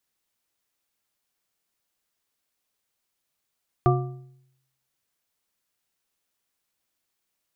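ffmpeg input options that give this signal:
-f lavfi -i "aevalsrc='0.158*pow(10,-3*t/0.8)*sin(2*PI*132*t)+0.126*pow(10,-3*t/0.59)*sin(2*PI*363.9*t)+0.1*pow(10,-3*t/0.482)*sin(2*PI*713.3*t)+0.0794*pow(10,-3*t/0.415)*sin(2*PI*1179.2*t)':d=1.55:s=44100"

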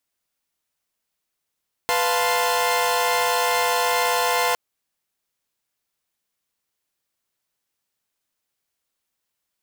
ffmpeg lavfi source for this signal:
-f lavfi -i "aevalsrc='0.0794*((2*mod(493.88*t,1)-1)+(2*mod(698.46*t,1)-1)+(2*mod(880*t,1)-1)+(2*mod(1046.5*t,1)-1))':d=2.66:s=44100"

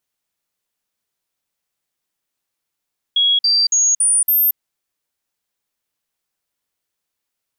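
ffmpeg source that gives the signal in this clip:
-f lavfi -i "aevalsrc='0.266*clip(min(mod(t,0.28),0.23-mod(t,0.28))/0.005,0,1)*sin(2*PI*3320*pow(2,floor(t/0.28)/2)*mod(t,0.28))':d=1.4:s=44100"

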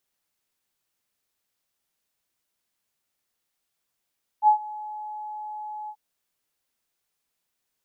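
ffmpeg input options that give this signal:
-f lavfi -i "aevalsrc='0.266*sin(2*PI*849*t)':d=1.534:s=44100,afade=t=in:d=0.058,afade=t=out:st=0.058:d=0.099:silence=0.0891,afade=t=out:st=1.47:d=0.064"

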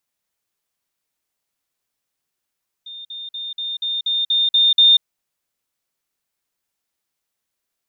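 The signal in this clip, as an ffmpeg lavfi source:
-f lavfi -i "aevalsrc='pow(10,(-32+3*floor(t/0.24))/20)*sin(2*PI*3630*t)*clip(min(mod(t,0.24),0.19-mod(t,0.24))/0.005,0,1)':d=2.16:s=44100"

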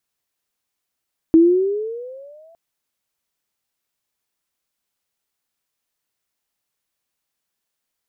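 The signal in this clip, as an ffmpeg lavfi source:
-f lavfi -i "aevalsrc='pow(10,(-6-40*t/1.21)/20)*sin(2*PI*320*1.21/(13*log(2)/12)*(exp(13*log(2)/12*t/1.21)-1))':d=1.21:s=44100"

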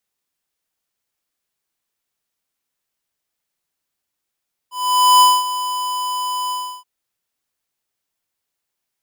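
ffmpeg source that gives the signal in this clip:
-f lavfi -i "aevalsrc='0.355*(2*lt(mod(1000*t,1),0.5)-1)':d=2.126:s=44100,afade=t=in:d=0.498,afade=t=out:st=0.498:d=0.223:silence=0.211,afade=t=out:st=1.8:d=0.326"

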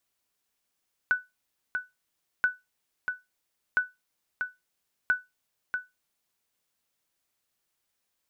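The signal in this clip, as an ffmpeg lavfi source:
-f lavfi -i "aevalsrc='0.168*(sin(2*PI*1490*mod(t,1.33))*exp(-6.91*mod(t,1.33)/0.2)+0.473*sin(2*PI*1490*max(mod(t,1.33)-0.64,0))*exp(-6.91*max(mod(t,1.33)-0.64,0)/0.2))':d=5.32:s=44100"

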